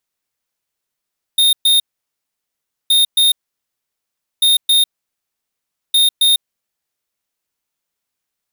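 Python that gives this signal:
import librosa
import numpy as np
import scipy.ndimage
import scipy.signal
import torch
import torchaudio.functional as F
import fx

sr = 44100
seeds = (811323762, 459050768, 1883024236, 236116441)

y = fx.beep_pattern(sr, wave='square', hz=3680.0, on_s=0.15, off_s=0.12, beeps=2, pause_s=1.1, groups=4, level_db=-11.5)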